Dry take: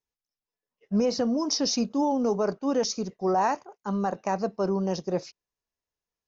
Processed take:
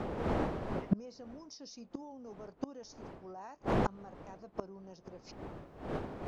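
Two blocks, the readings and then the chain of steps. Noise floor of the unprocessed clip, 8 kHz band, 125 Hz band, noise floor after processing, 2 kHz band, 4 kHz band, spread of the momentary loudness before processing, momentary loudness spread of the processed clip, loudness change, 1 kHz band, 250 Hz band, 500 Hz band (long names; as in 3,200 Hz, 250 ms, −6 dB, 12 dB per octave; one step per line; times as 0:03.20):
below −85 dBFS, can't be measured, −4.0 dB, −60 dBFS, −6.5 dB, −20.0 dB, 5 LU, 16 LU, −12.5 dB, −12.0 dB, −11.5 dB, −12.5 dB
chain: wind on the microphone 560 Hz −35 dBFS
gate with flip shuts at −23 dBFS, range −31 dB
level +7 dB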